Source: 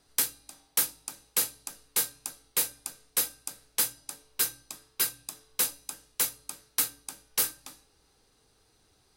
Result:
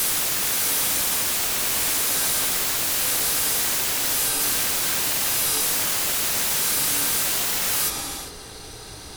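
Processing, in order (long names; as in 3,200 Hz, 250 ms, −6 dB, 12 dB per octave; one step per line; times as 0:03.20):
spectrum averaged block by block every 400 ms
reverb whose tail is shaped and stops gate 310 ms flat, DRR −6.5 dB
sine wavefolder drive 18 dB, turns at −18.5 dBFS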